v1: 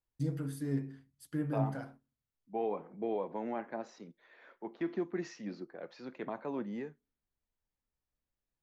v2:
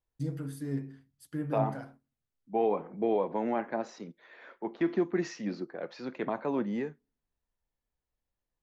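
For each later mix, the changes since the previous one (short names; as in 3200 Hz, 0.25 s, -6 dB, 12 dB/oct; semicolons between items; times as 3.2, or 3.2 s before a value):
second voice +7.0 dB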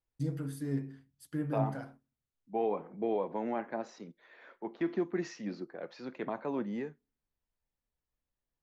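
second voice -4.0 dB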